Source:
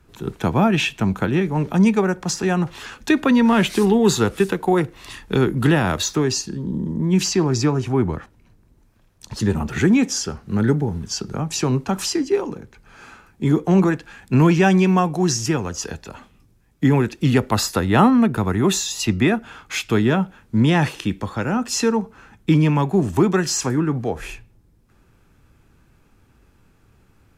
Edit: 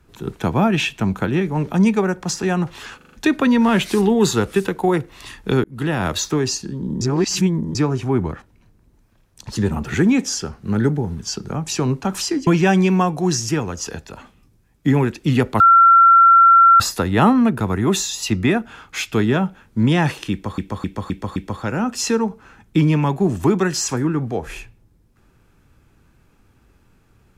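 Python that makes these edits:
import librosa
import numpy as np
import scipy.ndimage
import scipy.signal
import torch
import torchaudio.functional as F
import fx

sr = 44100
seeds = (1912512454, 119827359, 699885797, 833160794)

y = fx.edit(x, sr, fx.stutter(start_s=2.97, slice_s=0.04, count=5),
    fx.fade_in_span(start_s=5.48, length_s=0.44),
    fx.reverse_span(start_s=6.85, length_s=0.74),
    fx.cut(start_s=12.31, length_s=2.13),
    fx.insert_tone(at_s=17.57, length_s=1.2, hz=1360.0, db=-6.5),
    fx.repeat(start_s=21.09, length_s=0.26, count=5), tone=tone)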